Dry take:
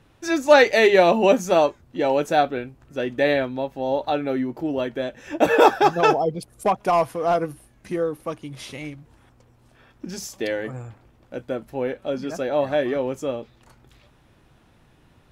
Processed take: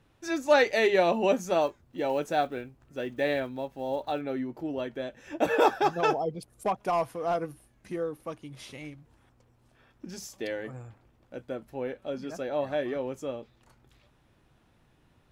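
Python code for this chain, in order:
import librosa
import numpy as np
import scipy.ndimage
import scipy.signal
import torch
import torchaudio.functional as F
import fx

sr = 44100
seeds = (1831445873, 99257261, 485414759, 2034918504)

y = fx.block_float(x, sr, bits=7, at=(1.61, 4.23))
y = y * 10.0 ** (-8.0 / 20.0)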